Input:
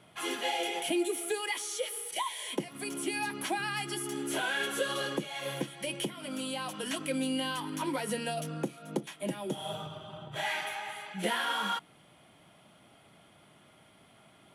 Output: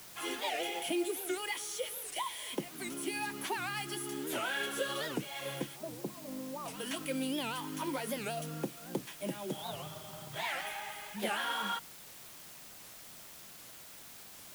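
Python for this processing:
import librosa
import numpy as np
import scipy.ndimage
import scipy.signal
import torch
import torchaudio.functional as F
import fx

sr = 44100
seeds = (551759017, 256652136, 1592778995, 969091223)

y = fx.cheby1_lowpass(x, sr, hz=1100.0, order=5, at=(5.76, 6.67))
y = fx.quant_dither(y, sr, seeds[0], bits=8, dither='triangular')
y = fx.record_warp(y, sr, rpm=78.0, depth_cents=250.0)
y = y * 10.0 ** (-3.5 / 20.0)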